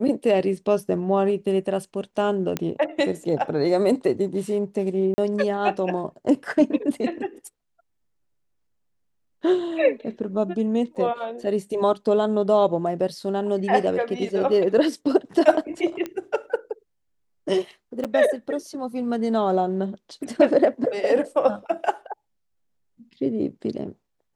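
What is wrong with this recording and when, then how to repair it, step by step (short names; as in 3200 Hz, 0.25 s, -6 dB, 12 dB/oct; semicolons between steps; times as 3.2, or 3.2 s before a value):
2.57 pop -10 dBFS
5.14–5.18 gap 40 ms
10.95–10.96 gap 7.1 ms
16.06 pop -17 dBFS
18.04–18.05 gap 7.2 ms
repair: de-click; interpolate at 5.14, 40 ms; interpolate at 10.95, 7.1 ms; interpolate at 18.04, 7.2 ms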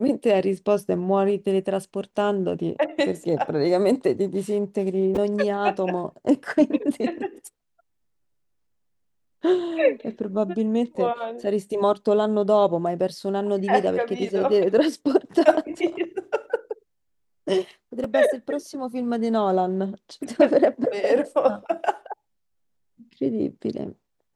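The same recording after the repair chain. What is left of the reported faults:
2.57 pop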